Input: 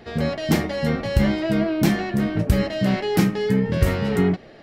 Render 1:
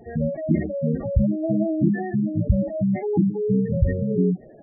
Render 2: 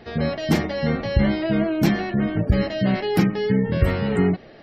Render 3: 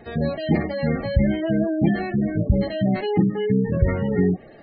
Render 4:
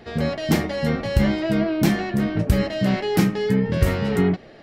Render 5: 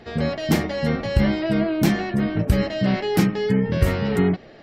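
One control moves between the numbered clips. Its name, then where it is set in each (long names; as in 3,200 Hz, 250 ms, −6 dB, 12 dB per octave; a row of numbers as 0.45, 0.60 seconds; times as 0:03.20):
gate on every frequency bin, under each frame's peak: −10, −35, −20, −60, −45 decibels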